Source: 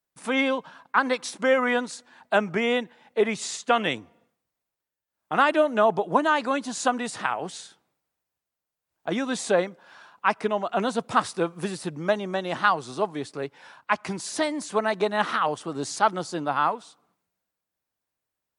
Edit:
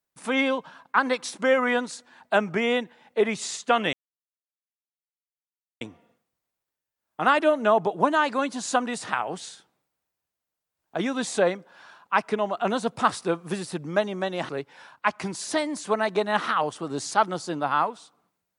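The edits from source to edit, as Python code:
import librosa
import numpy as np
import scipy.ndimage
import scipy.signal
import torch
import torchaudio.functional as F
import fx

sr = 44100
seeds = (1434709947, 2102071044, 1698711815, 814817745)

y = fx.edit(x, sr, fx.insert_silence(at_s=3.93, length_s=1.88),
    fx.cut(start_s=12.61, length_s=0.73), tone=tone)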